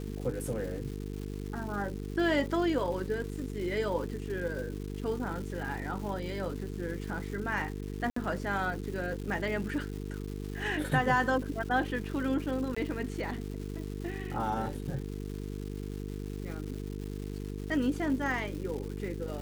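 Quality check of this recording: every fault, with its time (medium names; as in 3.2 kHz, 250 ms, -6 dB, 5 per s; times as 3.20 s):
buzz 50 Hz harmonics 9 -38 dBFS
crackle 450 per s -40 dBFS
8.10–8.16 s: dropout 64 ms
12.75–12.77 s: dropout 15 ms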